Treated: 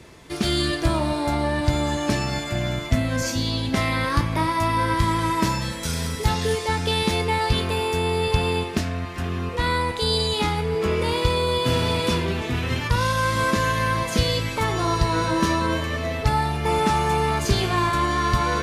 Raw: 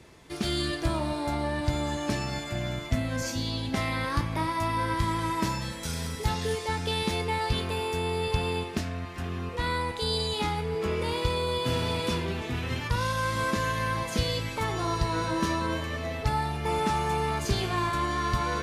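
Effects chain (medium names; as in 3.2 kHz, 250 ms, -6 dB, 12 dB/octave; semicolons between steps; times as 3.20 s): band-stop 810 Hz, Q 22; trim +6.5 dB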